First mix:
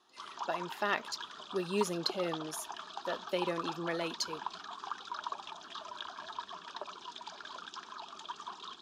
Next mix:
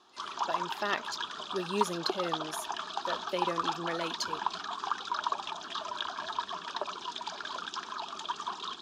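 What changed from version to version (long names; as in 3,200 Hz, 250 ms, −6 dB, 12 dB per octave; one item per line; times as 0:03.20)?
background +7.5 dB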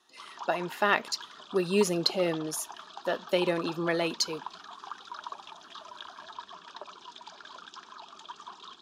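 speech +7.5 dB
background −8.5 dB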